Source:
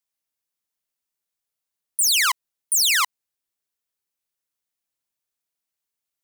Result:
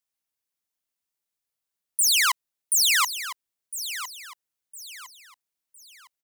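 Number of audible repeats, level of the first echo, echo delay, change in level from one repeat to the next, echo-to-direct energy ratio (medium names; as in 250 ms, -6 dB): 3, -12.0 dB, 1008 ms, -9.5 dB, -11.5 dB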